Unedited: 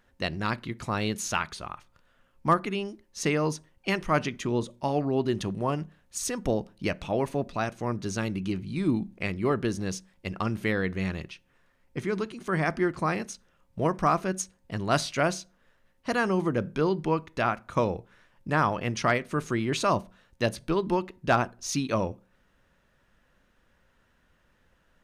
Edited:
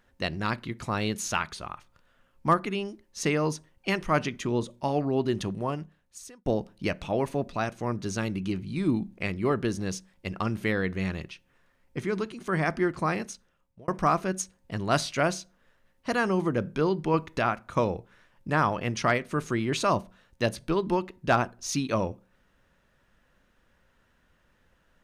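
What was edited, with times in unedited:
5.44–6.46 fade out
13.26–13.88 fade out
17.14–17.39 gain +4 dB

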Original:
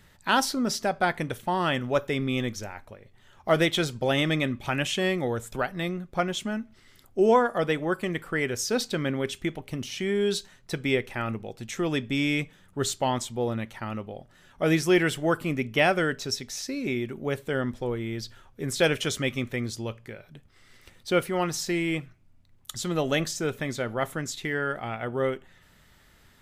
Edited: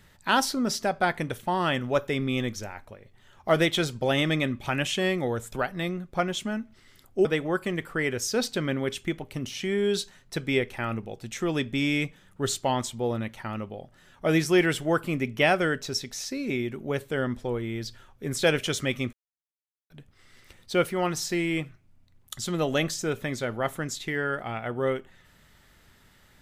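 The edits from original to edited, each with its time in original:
7.25–7.62 cut
19.5–20.27 mute

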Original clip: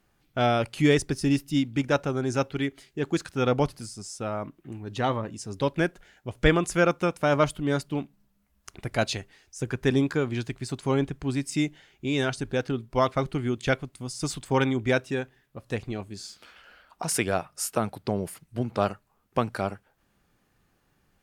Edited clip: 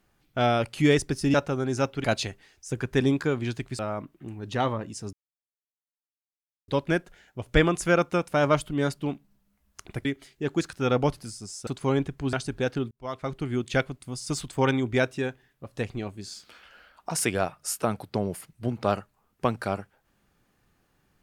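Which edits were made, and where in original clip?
1.34–1.91 cut
2.61–4.23 swap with 8.94–10.69
5.57 insert silence 1.55 s
11.35–12.26 cut
12.84–13.52 fade in

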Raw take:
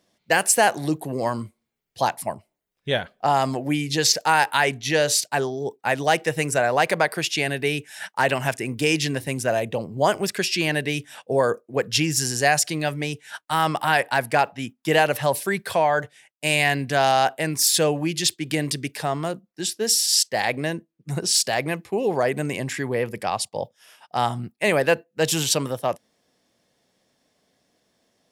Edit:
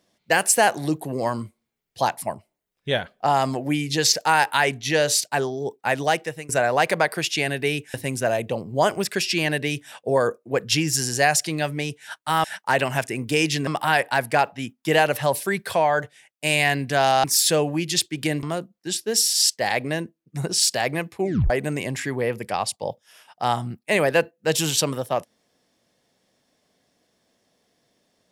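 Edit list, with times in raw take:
6.03–6.49 fade out, to -21 dB
7.94–9.17 move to 13.67
17.24–17.52 cut
18.71–19.16 cut
21.94 tape stop 0.29 s

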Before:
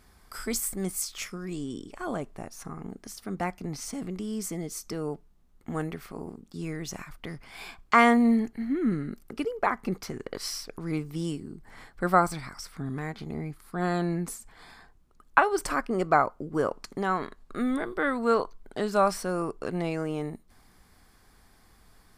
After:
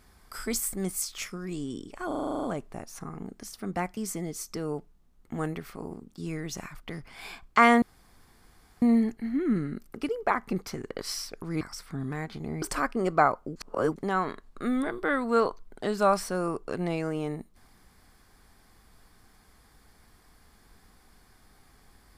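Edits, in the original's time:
2.07 stutter 0.04 s, 10 plays
3.61–4.33 cut
8.18 insert room tone 1.00 s
10.97–12.47 cut
13.48–15.56 cut
16.5–16.9 reverse

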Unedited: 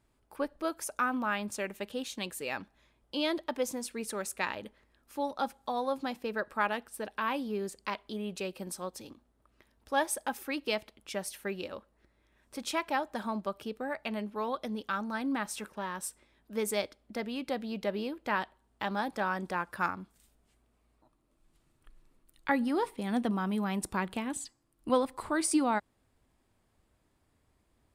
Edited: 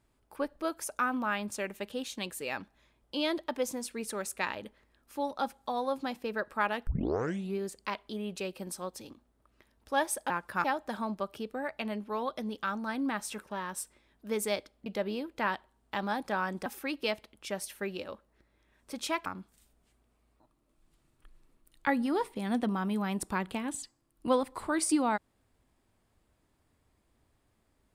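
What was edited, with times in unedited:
6.87 tape start 0.71 s
10.3–12.9 swap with 19.54–19.88
17.12–17.74 cut

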